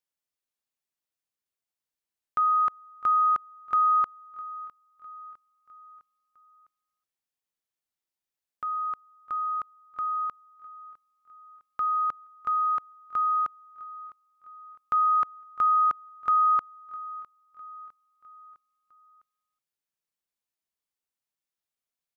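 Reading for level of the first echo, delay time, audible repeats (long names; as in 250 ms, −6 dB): −20.5 dB, 656 ms, 3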